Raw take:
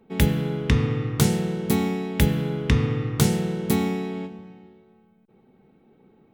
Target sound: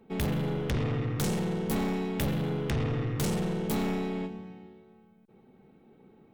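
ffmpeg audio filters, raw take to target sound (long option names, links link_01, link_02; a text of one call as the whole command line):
ffmpeg -i in.wav -filter_complex "[0:a]asettb=1/sr,asplit=3[link_01][link_02][link_03];[link_01]atrim=end=0.804[link_04];[link_02]atrim=start=0.8:end=2.87,asetpts=PTS-STARTPTS,afade=type=in:duration=0.004:curve=qsin,afade=type=out:start_time=2.066:duration=0.004:curve=qsin,highpass=frequency=68:width=0.5412,highpass=frequency=68:width=1.3066[link_05];[link_03]atrim=start=2.866[link_06];[link_04][link_05]acrossfade=duration=0.004:curve1=hsin:curve2=qsin[link_07];[link_07][link_06]acrossfade=duration=0.004:curve1=qsin:curve2=hsin,aeval=exprs='(tanh(20*val(0)+0.25)-tanh(0.25))/20':channel_layout=same" out.wav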